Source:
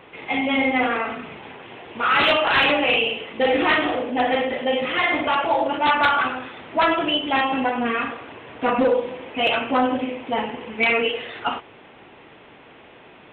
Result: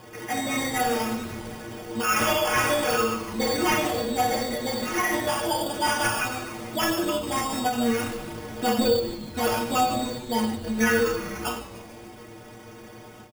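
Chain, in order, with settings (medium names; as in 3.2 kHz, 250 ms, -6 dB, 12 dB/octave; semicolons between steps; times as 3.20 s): 9.00–10.64 s: gate -31 dBFS, range -7 dB; bass shelf 420 Hz +11 dB; de-hum 51.57 Hz, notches 7; in parallel at +1 dB: compression, threshold -30 dBFS, peak gain reduction 18.5 dB; on the sum: sample-and-hold 11×; inharmonic resonator 110 Hz, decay 0.22 s, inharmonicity 0.008; on a send: frequency-shifting echo 147 ms, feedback 64%, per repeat -130 Hz, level -15 dB; on the sum: endings held to a fixed fall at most 120 dB/s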